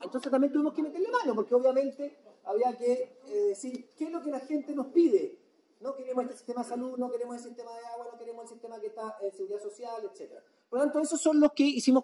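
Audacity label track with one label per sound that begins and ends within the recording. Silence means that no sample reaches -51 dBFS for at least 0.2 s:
5.810000	10.390000	sound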